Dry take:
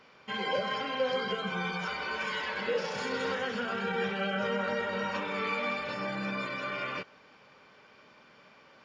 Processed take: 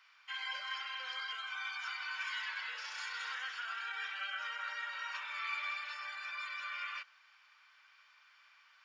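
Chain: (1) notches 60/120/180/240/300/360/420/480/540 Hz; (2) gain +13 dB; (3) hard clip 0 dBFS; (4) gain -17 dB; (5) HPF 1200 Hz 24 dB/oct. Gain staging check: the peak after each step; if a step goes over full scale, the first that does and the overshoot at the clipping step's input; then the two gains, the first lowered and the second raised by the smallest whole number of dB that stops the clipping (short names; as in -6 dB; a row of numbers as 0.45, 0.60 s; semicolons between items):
-19.0, -6.0, -6.0, -23.0, -27.5 dBFS; no overload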